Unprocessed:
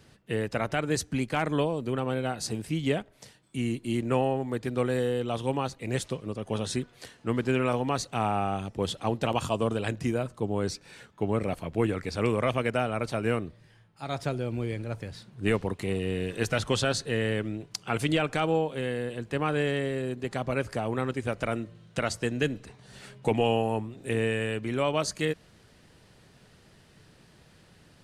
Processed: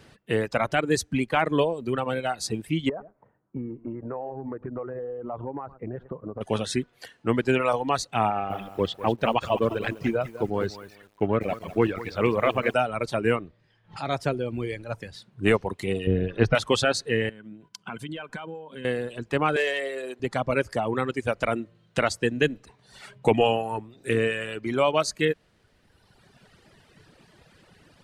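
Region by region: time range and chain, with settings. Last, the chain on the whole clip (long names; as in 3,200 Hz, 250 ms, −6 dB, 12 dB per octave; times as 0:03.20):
0:02.89–0:06.41: low-pass filter 1,300 Hz 24 dB per octave + single-tap delay 104 ms −17 dB + downward compressor 16 to 1, threshold −31 dBFS
0:08.30–0:12.74: mu-law and A-law mismatch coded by A + low-pass filter 3,900 Hz + feedback echo at a low word length 199 ms, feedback 35%, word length 8 bits, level −7.5 dB
0:13.35–0:14.12: low-pass filter 6,600 Hz + background raised ahead of every attack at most 110 dB per second
0:16.07–0:16.55: Savitzky-Golay smoothing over 15 samples + spectral tilt −2.5 dB per octave
0:17.29–0:18.85: downward expander −47 dBFS + downward compressor 3 to 1, threshold −45 dBFS + hollow resonant body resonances 200/1,000/1,500/3,100 Hz, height 11 dB, ringing for 35 ms
0:19.56–0:20.20: high-pass filter 480 Hz + leveller curve on the samples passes 1
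whole clip: reverb reduction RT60 1.7 s; bass and treble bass −4 dB, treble −5 dB; level +6.5 dB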